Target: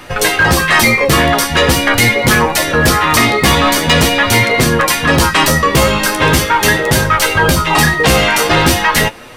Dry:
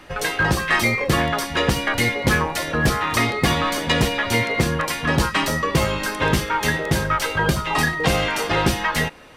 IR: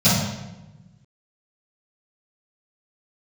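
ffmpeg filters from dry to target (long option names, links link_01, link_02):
-af "flanger=delay=7.9:depth=7.3:regen=44:speed=0.43:shape=triangular,apsyclip=19dB,highshelf=frequency=7600:gain=6.5,volume=-4.5dB"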